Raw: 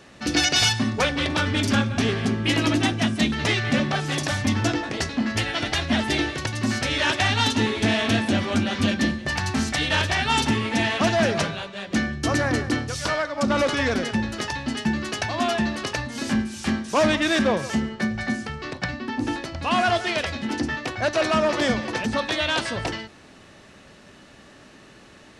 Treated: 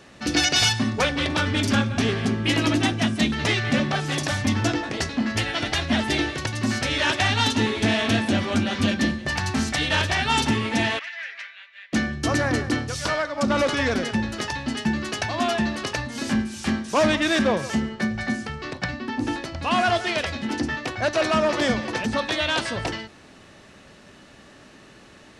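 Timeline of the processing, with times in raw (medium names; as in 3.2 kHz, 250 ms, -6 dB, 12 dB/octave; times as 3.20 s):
10.99–11.93 s: ladder band-pass 2.2 kHz, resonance 65%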